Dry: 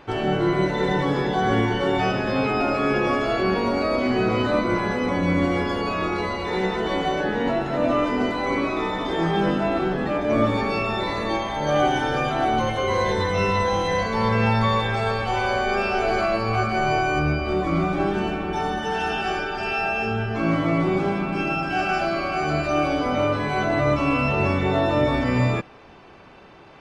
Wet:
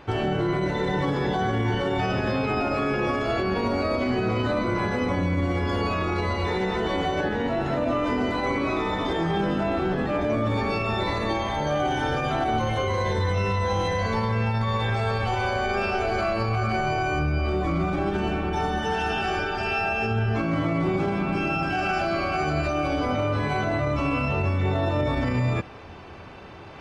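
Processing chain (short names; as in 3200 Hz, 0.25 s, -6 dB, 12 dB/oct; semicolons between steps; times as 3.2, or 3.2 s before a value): reverse; upward compressor, threshold -37 dBFS; reverse; bell 85 Hz +11 dB 0.76 oct; limiter -16.5 dBFS, peak gain reduction 10.5 dB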